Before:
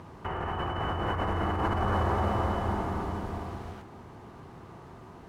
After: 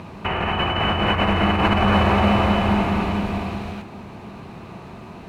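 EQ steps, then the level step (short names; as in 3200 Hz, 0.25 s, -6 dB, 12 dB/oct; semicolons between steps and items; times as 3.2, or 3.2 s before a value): dynamic EQ 2600 Hz, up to +7 dB, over -52 dBFS, Q 1.2; thirty-one-band EQ 200 Hz +10 dB, 630 Hz +4 dB, 2500 Hz +12 dB, 4000 Hz +7 dB; +7.5 dB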